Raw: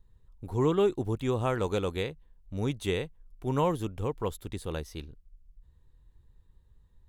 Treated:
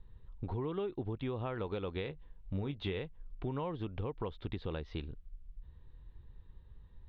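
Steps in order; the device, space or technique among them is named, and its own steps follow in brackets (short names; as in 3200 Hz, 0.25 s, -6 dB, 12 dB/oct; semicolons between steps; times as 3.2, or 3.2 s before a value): serial compression, peaks first (compressor 5:1, threshold -35 dBFS, peak gain reduction 13 dB; compressor 2:1, threshold -43 dBFS, peak gain reduction 6 dB); steep low-pass 3900 Hz 36 dB/oct; 2.03–3 doubler 21 ms -10.5 dB; gain +5.5 dB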